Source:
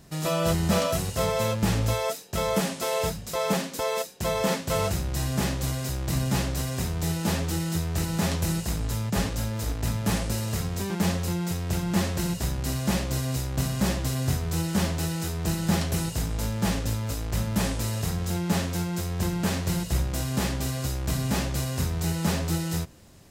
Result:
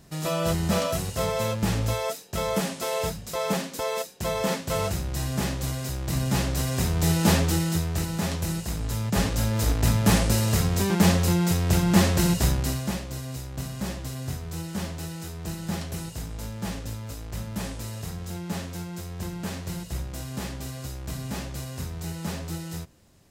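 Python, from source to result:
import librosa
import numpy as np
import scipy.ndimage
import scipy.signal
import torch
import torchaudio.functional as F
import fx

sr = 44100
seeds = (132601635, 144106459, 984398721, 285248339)

y = fx.gain(x, sr, db=fx.line((6.03, -1.0), (7.3, 6.5), (8.18, -2.0), (8.7, -2.0), (9.64, 6.0), (12.51, 6.0), (13.01, -6.5)))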